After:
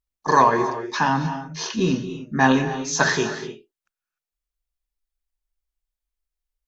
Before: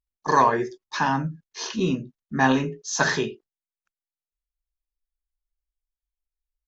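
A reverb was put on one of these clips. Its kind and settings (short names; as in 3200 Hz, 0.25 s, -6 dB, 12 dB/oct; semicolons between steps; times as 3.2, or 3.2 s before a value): non-linear reverb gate 0.32 s rising, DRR 10.5 dB; gain +2.5 dB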